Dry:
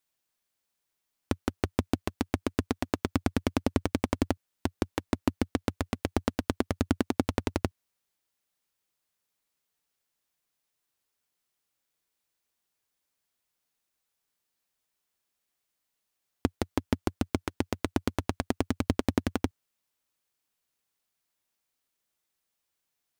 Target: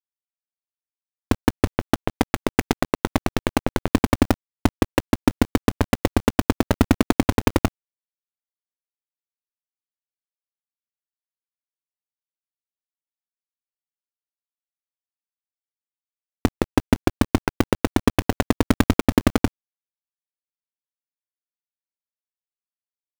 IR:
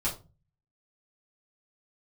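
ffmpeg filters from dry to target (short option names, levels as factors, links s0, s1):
-filter_complex "[0:a]lowpass=f=3600:w=0.5412,lowpass=f=3600:w=1.3066,highshelf=f=2500:g=-9,asettb=1/sr,asplit=3[s0][s1][s2];[s0]atrim=end=1.784[s3];[s1]atrim=start=1.78:end=3.91,asetpts=PTS-STARTPTS,afade=t=in:d=0.004:c=qsin,afade=t=out:st=2.126:d=0.004:c=qsin,acompressor=threshold=0.0501:ratio=16[s4];[s2]atrim=start=3.906[s5];[s3][s4]acrossfade=d=0.004:c1=hsin:c2=qsin[s6];[s6][s5]acrossfade=d=0.004:c1=qsin:c2=hsin,acrusher=bits=5:dc=4:mix=0:aa=0.000001,alimiter=level_in=9.44:limit=0.891:release=50:level=0:latency=1,volume=0.891"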